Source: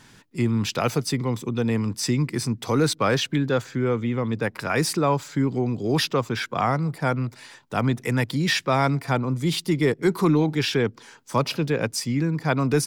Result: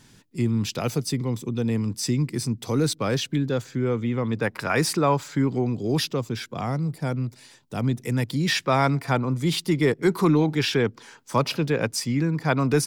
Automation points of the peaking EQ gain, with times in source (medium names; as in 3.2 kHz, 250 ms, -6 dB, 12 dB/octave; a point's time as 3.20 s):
peaking EQ 1.3 kHz 2.5 oct
3.59 s -7.5 dB
4.42 s +1 dB
5.54 s +1 dB
6.22 s -10.5 dB
8.03 s -10.5 dB
8.68 s +0.5 dB